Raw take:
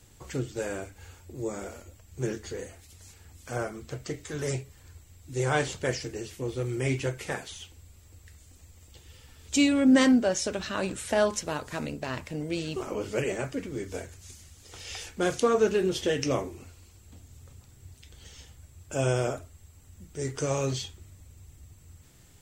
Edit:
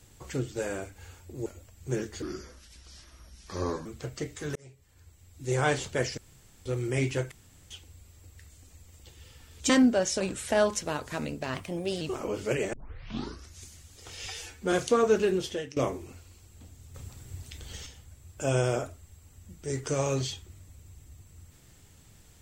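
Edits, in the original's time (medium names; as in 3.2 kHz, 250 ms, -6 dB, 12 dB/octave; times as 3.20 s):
1.46–1.77 s: delete
2.53–3.74 s: speed 74%
4.44–5.41 s: fade in
6.06–6.54 s: room tone
7.20–7.59 s: room tone
9.58–9.99 s: delete
10.50–10.81 s: delete
12.15–12.68 s: speed 114%
13.40 s: tape start 0.89 s
14.93–15.24 s: stretch 1.5×
15.80–16.28 s: fade out linear, to -21.5 dB
17.46–18.38 s: gain +7 dB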